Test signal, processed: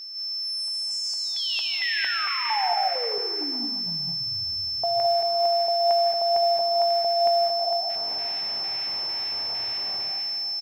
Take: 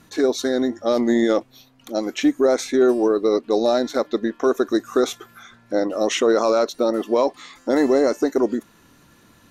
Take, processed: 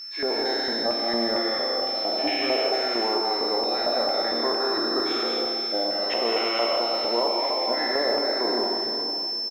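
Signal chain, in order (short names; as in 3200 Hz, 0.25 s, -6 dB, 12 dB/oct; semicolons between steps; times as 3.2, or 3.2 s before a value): spectral trails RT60 2.36 s; low shelf 280 Hz +8 dB; LFO band-pass square 2.2 Hz 810–2200 Hz; compressor 2:1, threshold -26 dBFS; whine 5300 Hz -31 dBFS; feedback echo 0.15 s, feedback 57%, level -17 dB; non-linear reverb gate 0.24 s rising, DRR 1 dB; modulation noise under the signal 27 dB; high shelf 4700 Hz -9 dB; doubler 17 ms -12 dB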